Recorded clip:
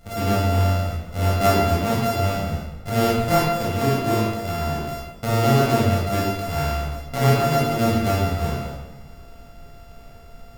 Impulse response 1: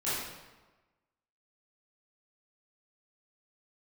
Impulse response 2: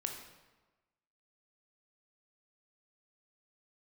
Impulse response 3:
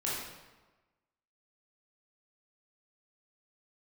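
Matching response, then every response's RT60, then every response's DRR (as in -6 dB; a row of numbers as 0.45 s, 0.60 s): 3; 1.2 s, 1.2 s, 1.2 s; -12.5 dB, 3.0 dB, -7.0 dB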